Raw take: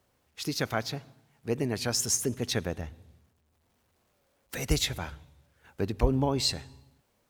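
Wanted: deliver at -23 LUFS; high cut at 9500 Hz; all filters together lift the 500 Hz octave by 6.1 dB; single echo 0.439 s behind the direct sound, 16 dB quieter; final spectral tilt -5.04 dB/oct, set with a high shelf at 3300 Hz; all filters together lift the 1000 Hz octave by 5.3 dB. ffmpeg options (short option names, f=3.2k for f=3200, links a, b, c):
-af "lowpass=9.5k,equalizer=f=500:t=o:g=6.5,equalizer=f=1k:t=o:g=5,highshelf=f=3.3k:g=-6.5,aecho=1:1:439:0.158,volume=6dB"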